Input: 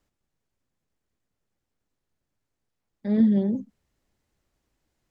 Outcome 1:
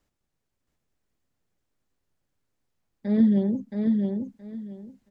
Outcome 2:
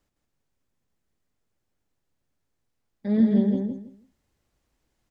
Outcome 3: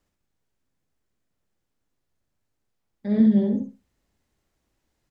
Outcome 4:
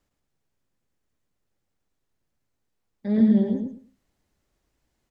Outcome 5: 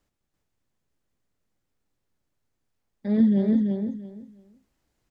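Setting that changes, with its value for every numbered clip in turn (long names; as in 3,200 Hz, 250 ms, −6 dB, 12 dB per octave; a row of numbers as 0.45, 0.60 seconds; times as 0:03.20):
repeating echo, delay time: 672, 163, 64, 110, 338 milliseconds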